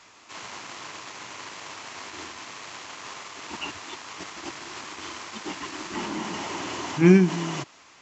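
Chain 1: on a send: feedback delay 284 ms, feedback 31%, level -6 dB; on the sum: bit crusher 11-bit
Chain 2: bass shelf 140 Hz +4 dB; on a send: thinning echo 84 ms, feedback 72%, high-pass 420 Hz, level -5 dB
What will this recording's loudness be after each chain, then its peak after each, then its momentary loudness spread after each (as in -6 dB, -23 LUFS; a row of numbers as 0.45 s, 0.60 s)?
-27.5 LUFS, -27.0 LUFS; -5.0 dBFS, -4.0 dBFS; 17 LU, 17 LU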